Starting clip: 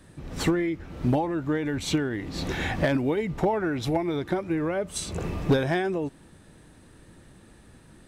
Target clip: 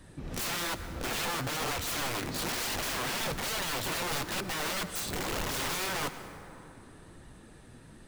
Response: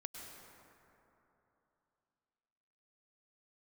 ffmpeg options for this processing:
-filter_complex "[0:a]aeval=exprs='(mod(25.1*val(0)+1,2)-1)/25.1':channel_layout=same,flanger=delay=1:depth=7.5:regen=65:speed=1.1:shape=sinusoidal,asplit=2[link_01][link_02];[1:a]atrim=start_sample=2205[link_03];[link_02][link_03]afir=irnorm=-1:irlink=0,volume=-0.5dB[link_04];[link_01][link_04]amix=inputs=2:normalize=0"

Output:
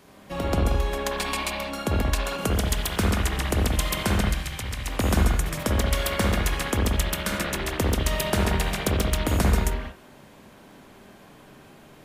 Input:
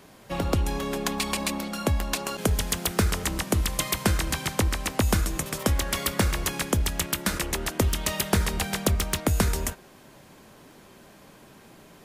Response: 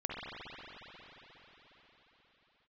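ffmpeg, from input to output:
-filter_complex "[0:a]asettb=1/sr,asplit=3[link_01][link_02][link_03];[link_01]atrim=end=4.204[link_04];[link_02]atrim=start=4.2:end=4.88,asetpts=PTS-STARTPTS,afade=type=in:duration=0.004:curve=qsin,afade=type=out:start_time=0.676:duration=0.004:curve=qsin,acrossover=split=110|1800[link_05][link_06][link_07];[link_05]acompressor=threshold=-32dB:ratio=4[link_08];[link_06]acompressor=threshold=-42dB:ratio=4[link_09];[link_07]acompressor=threshold=-31dB:ratio=4[link_10];[link_08][link_09][link_10]amix=inputs=3:normalize=0[link_11];[link_03]atrim=start=4.876[link_12];[link_04][link_11]acrossfade=duration=0.004:curve1=hsin:curve2=qsin[link_13];[link_13][link_12]acrossfade=duration=0.004:curve1=qsin:curve2=hsin[link_14];[1:a]atrim=start_sample=2205,afade=type=out:start_time=0.27:duration=0.01,atrim=end_sample=12348[link_15];[link_14][link_15]afir=irnorm=-1:irlink=0"

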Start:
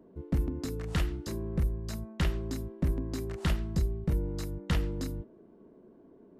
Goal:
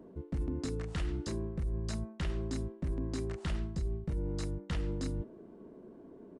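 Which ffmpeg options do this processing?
ffmpeg -i in.wav -af "areverse,acompressor=threshold=-36dB:ratio=6,areverse,aresample=22050,aresample=44100,volume=4dB" out.wav

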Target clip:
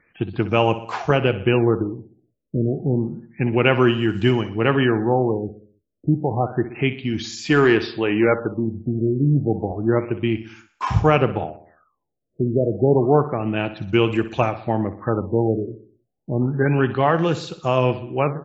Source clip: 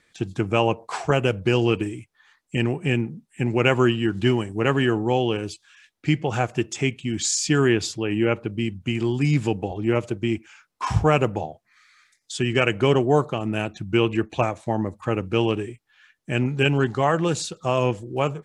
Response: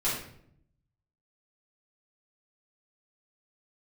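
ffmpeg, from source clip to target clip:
-filter_complex "[0:a]asplit=3[link_01][link_02][link_03];[link_01]afade=type=out:start_time=7.44:duration=0.02[link_04];[link_02]asplit=2[link_05][link_06];[link_06]highpass=frequency=720:poles=1,volume=14dB,asoftclip=type=tanh:threshold=-6.5dB[link_07];[link_05][link_07]amix=inputs=2:normalize=0,lowpass=frequency=1700:poles=1,volume=-6dB,afade=type=in:start_time=7.44:duration=0.02,afade=type=out:start_time=8.66:duration=0.02[link_08];[link_03]afade=type=in:start_time=8.66:duration=0.02[link_09];[link_04][link_08][link_09]amix=inputs=3:normalize=0,acrossover=split=4200[link_10][link_11];[link_11]acompressor=threshold=-51dB:ratio=4:attack=1:release=60[link_12];[link_10][link_12]amix=inputs=2:normalize=0,aecho=1:1:62|124|186|248|310:0.211|0.112|0.0594|0.0315|0.0167,afftfilt=real='re*lt(b*sr/1024,640*pow(7800/640,0.5+0.5*sin(2*PI*0.3*pts/sr)))':imag='im*lt(b*sr/1024,640*pow(7800/640,0.5+0.5*sin(2*PI*0.3*pts/sr)))':win_size=1024:overlap=0.75,volume=2.5dB"

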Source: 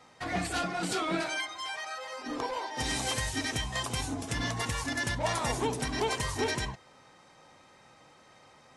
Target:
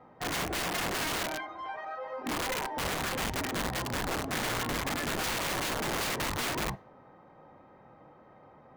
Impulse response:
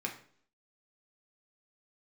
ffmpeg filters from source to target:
-filter_complex "[0:a]lowpass=1000,aeval=exprs='(mod(39.8*val(0)+1,2)-1)/39.8':channel_layout=same,asplit=2[link_01][link_02];[1:a]atrim=start_sample=2205,asetrate=38367,aresample=44100[link_03];[link_02][link_03]afir=irnorm=-1:irlink=0,volume=-18dB[link_04];[link_01][link_04]amix=inputs=2:normalize=0,volume=4dB"

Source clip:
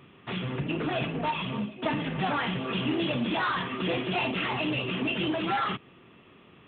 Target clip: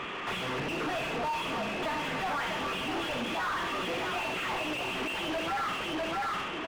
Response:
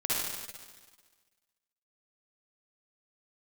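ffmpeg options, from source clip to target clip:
-filter_complex "[0:a]asplit=2[link_01][link_02];[link_02]adelay=651,lowpass=frequency=3600:poles=1,volume=-8.5dB,asplit=2[link_03][link_04];[link_04]adelay=651,lowpass=frequency=3600:poles=1,volume=0.17,asplit=2[link_05][link_06];[link_06]adelay=651,lowpass=frequency=3600:poles=1,volume=0.17[link_07];[link_01][link_03][link_05][link_07]amix=inputs=4:normalize=0,asplit=2[link_08][link_09];[1:a]atrim=start_sample=2205,afade=type=out:start_time=0.16:duration=0.01,atrim=end_sample=7497[link_10];[link_09][link_10]afir=irnorm=-1:irlink=0,volume=-14dB[link_11];[link_08][link_11]amix=inputs=2:normalize=0,acompressor=threshold=-32dB:ratio=3,lowshelf=frequency=340:gain=-10.5,asplit=2[link_12][link_13];[link_13]highpass=frequency=720:poles=1,volume=34dB,asoftclip=type=tanh:threshold=-24.5dB[link_14];[link_12][link_14]amix=inputs=2:normalize=0,lowpass=frequency=1600:poles=1,volume=-6dB"

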